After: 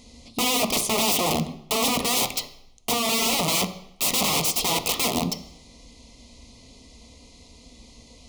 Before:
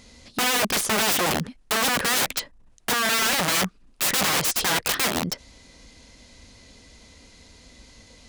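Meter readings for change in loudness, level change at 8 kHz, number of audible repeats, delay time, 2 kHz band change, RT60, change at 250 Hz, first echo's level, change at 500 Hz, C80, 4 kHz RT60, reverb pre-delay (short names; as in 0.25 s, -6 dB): -0.5 dB, 0.0 dB, none, none, -6.0 dB, 0.75 s, +2.5 dB, none, +1.0 dB, 15.5 dB, 0.70 s, 3 ms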